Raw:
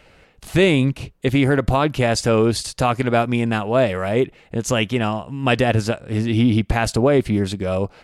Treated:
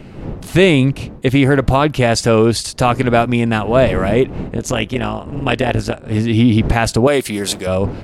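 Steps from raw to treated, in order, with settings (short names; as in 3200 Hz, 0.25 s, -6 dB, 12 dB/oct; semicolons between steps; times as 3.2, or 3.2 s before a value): wind noise 250 Hz -33 dBFS; 4.56–6.05 AM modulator 160 Hz, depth 70%; 7.07–7.67 RIAA curve recording; gain +4.5 dB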